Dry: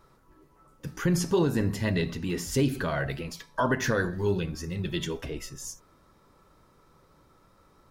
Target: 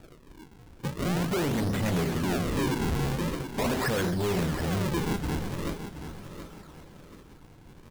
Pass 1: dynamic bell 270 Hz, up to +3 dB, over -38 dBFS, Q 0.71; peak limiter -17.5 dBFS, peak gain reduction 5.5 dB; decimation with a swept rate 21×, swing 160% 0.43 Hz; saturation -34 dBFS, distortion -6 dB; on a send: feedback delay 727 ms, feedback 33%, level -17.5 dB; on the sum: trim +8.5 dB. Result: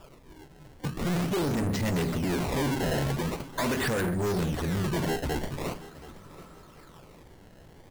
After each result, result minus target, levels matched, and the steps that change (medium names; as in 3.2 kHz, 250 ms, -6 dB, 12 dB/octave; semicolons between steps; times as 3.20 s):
echo-to-direct -7.5 dB; decimation with a swept rate: distortion -5 dB
change: feedback delay 727 ms, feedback 33%, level -10 dB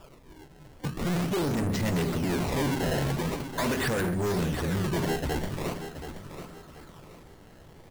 decimation with a swept rate: distortion -5 dB
change: decimation with a swept rate 41×, swing 160% 0.43 Hz